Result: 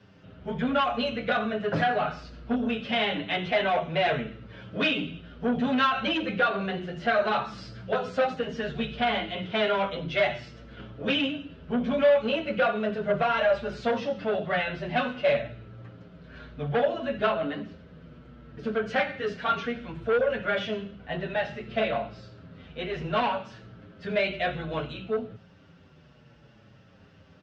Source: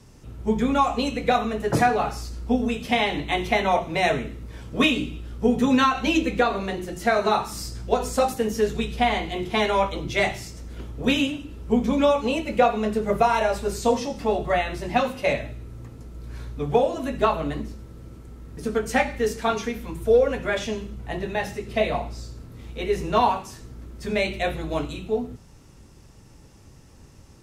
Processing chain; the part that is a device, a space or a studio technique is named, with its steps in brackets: barber-pole flanger into a guitar amplifier (endless flanger 7.2 ms -0.63 Hz; saturation -21 dBFS, distortion -11 dB; cabinet simulation 110–4100 Hz, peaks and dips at 170 Hz +5 dB, 340 Hz -5 dB, 600 Hz +7 dB, 910 Hz -4 dB, 1.5 kHz +9 dB, 3 kHz +6 dB)

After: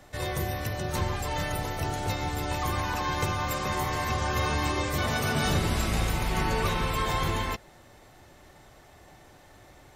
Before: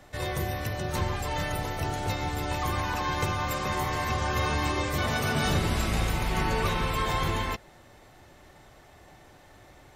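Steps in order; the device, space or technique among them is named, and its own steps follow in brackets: exciter from parts (in parallel at -11 dB: high-pass 3.6 kHz 12 dB/octave + saturation -31.5 dBFS, distortion -20 dB)

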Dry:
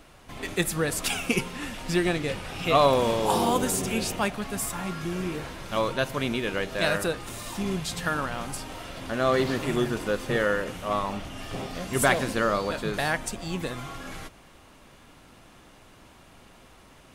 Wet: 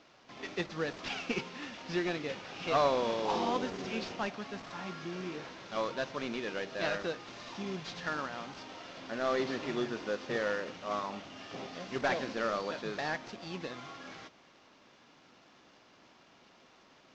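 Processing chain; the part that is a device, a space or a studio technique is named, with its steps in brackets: early wireless headset (high-pass 200 Hz 12 dB/octave; CVSD coder 32 kbps); trim -7 dB

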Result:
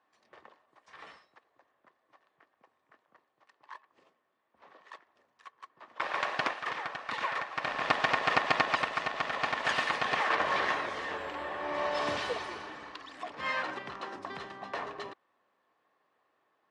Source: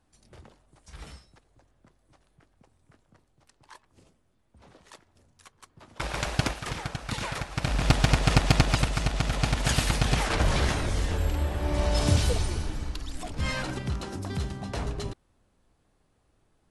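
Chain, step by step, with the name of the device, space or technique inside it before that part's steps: tin-can telephone (band-pass 510–2900 Hz; small resonant body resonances 1.1/1.8 kHz, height 9 dB, ringing for 25 ms)

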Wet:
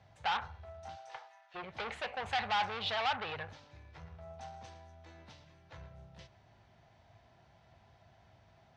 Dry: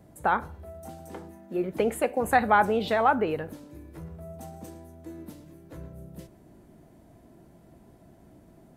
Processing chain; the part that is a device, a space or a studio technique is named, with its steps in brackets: 0.95–1.54 s: high-pass 390 Hz -> 960 Hz 24 dB/octave; peaking EQ 5.9 kHz +6 dB 0.31 oct; scooped metal amplifier (valve stage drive 30 dB, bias 0.5; cabinet simulation 88–4200 Hz, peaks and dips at 100 Hz +6 dB, 180 Hz -4 dB, 270 Hz +3 dB, 800 Hz +6 dB; amplifier tone stack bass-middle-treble 10-0-10); trim +8 dB

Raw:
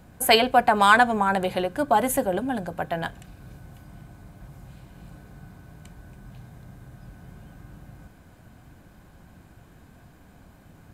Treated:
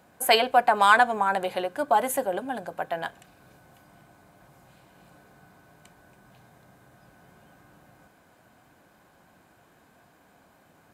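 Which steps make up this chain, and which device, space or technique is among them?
filter by subtraction (in parallel: low-pass 680 Hz 12 dB/octave + polarity flip); on the sum: trim -3 dB

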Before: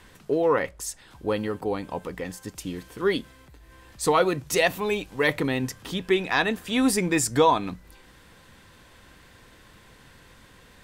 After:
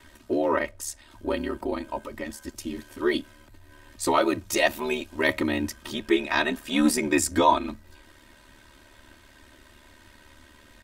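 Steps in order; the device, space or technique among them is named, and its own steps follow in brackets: ring-modulated robot voice (ring modulator 37 Hz; comb 3.2 ms, depth 86%)

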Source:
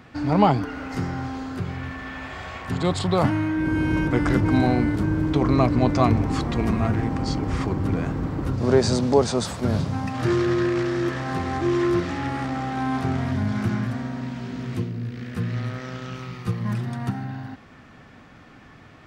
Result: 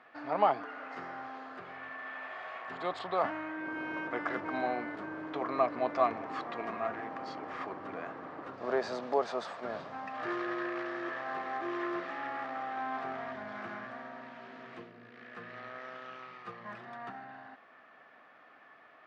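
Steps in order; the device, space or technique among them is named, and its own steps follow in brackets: tin-can telephone (band-pass 540–2700 Hz; small resonant body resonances 660/1200/1700 Hz, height 6 dB, ringing for 20 ms); trim -8 dB

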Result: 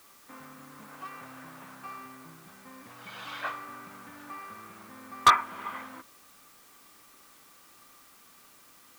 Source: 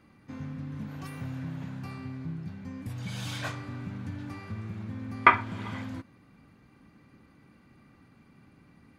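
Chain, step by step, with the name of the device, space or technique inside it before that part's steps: drive-through speaker (band-pass 480–3100 Hz; peaking EQ 1.2 kHz +9 dB 0.45 oct; hard clipper -12 dBFS, distortion -5 dB; white noise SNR 22 dB)

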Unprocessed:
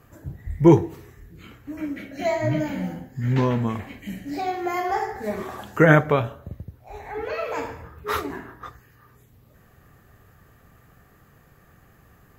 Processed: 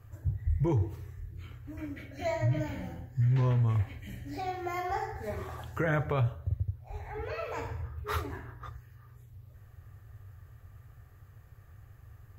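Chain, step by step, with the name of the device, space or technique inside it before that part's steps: car stereo with a boomy subwoofer (resonant low shelf 140 Hz +9.5 dB, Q 3; peak limiter -12.5 dBFS, peak gain reduction 10.5 dB); trim -8 dB

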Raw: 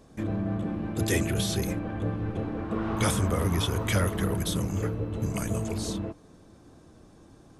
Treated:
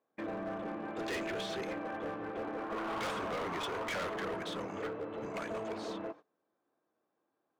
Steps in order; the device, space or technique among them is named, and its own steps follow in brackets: walkie-talkie (band-pass 500–2200 Hz; hard clipper -36 dBFS, distortion -7 dB; gate -52 dBFS, range -23 dB); trim +2 dB

